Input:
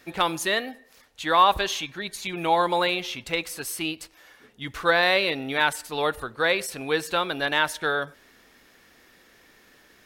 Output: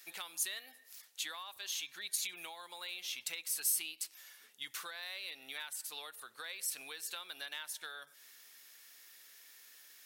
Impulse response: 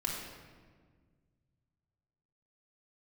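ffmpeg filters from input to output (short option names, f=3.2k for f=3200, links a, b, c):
-af "acompressor=threshold=-33dB:ratio=12,aderivative,volume=4dB"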